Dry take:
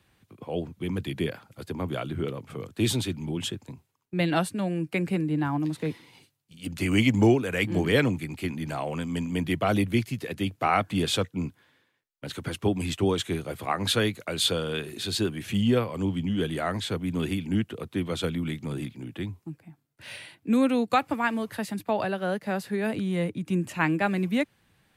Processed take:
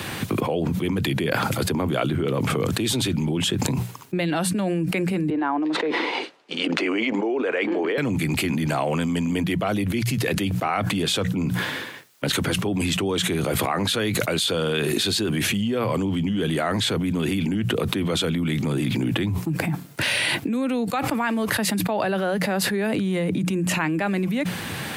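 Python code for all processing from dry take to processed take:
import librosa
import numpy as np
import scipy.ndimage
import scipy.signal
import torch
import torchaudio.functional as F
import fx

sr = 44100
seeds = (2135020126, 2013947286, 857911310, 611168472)

y = fx.chain(x, sr, fx.highpass(hz=350.0, slope=24),
    fx.spacing_loss(db_at_10k=31), at=(5.3, 7.98))
y = scipy.signal.sosfilt(scipy.signal.butter(2, 110.0, 'highpass', fs=sr, output='sos'), y)
y = fx.hum_notches(y, sr, base_hz=60, count=3)
y = fx.env_flatten(y, sr, amount_pct=100)
y = F.gain(torch.from_numpy(y), -4.5).numpy()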